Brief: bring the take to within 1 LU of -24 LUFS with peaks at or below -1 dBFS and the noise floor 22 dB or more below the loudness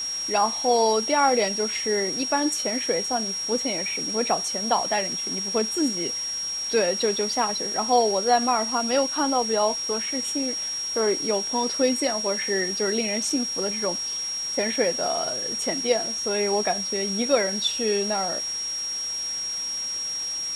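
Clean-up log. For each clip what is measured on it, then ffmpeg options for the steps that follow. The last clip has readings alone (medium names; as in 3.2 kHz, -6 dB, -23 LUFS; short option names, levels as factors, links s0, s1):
steady tone 5.6 kHz; tone level -27 dBFS; noise floor -30 dBFS; noise floor target -46 dBFS; loudness -23.5 LUFS; peak level -7.0 dBFS; loudness target -24.0 LUFS
-> -af "bandreject=f=5600:w=30"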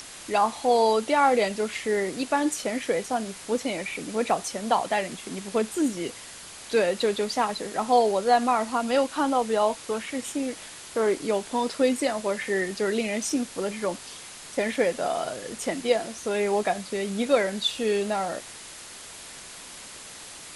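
steady tone not found; noise floor -43 dBFS; noise floor target -48 dBFS
-> -af "afftdn=nr=6:nf=-43"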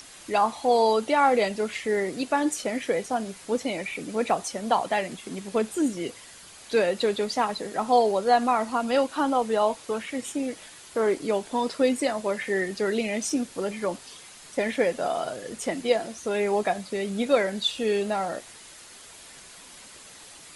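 noise floor -47 dBFS; noise floor target -48 dBFS
-> -af "afftdn=nr=6:nf=-47"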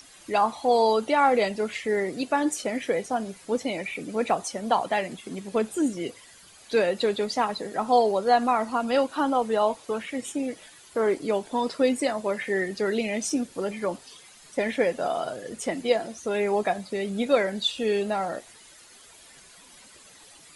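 noise floor -51 dBFS; loudness -26.0 LUFS; peak level -7.5 dBFS; loudness target -24.0 LUFS
-> -af "volume=1.26"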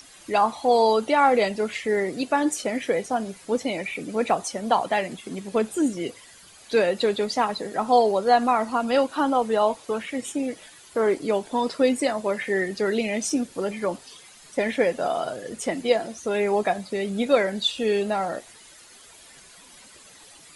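loudness -24.0 LUFS; peak level -5.5 dBFS; noise floor -49 dBFS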